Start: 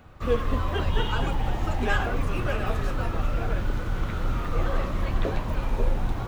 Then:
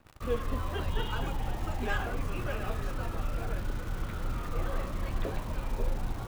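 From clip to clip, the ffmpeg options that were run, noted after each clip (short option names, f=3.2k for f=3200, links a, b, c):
-af "acrusher=bits=8:dc=4:mix=0:aa=0.000001,volume=-7dB"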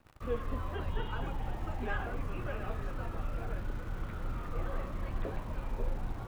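-filter_complex "[0:a]acrossover=split=2700[a][b];[b]acompressor=threshold=-58dB:ratio=4:attack=1:release=60[c];[a][c]amix=inputs=2:normalize=0,volume=-3.5dB"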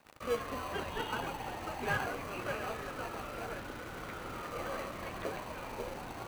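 -filter_complex "[0:a]highpass=f=1k:p=1,asplit=2[a][b];[b]acrusher=samples=25:mix=1:aa=0.000001,volume=-5dB[c];[a][c]amix=inputs=2:normalize=0,volume=6.5dB"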